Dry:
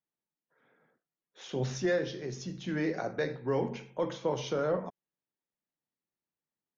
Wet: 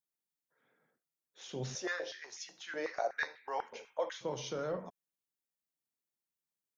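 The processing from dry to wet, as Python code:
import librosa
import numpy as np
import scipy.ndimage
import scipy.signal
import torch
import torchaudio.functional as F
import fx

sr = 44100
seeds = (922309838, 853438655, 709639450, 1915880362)

y = fx.high_shelf(x, sr, hz=4200.0, db=11.0)
y = fx.filter_held_highpass(y, sr, hz=8.1, low_hz=530.0, high_hz=2100.0, at=(1.75, 4.21))
y = F.gain(torch.from_numpy(y), -7.5).numpy()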